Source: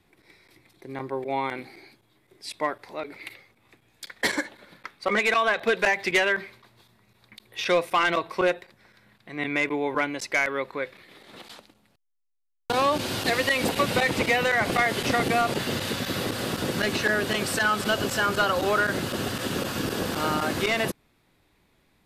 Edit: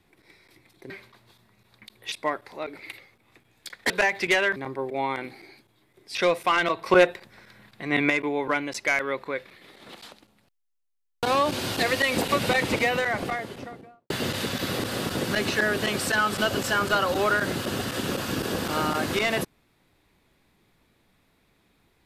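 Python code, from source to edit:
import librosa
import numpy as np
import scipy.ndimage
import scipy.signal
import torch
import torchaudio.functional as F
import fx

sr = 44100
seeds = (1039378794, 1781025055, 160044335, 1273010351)

y = fx.studio_fade_out(x, sr, start_s=14.13, length_s=1.44)
y = fx.edit(y, sr, fx.swap(start_s=0.9, length_s=1.59, other_s=6.4, other_length_s=1.22),
    fx.cut(start_s=4.27, length_s=1.47),
    fx.clip_gain(start_s=8.33, length_s=1.24, db=6.0), tone=tone)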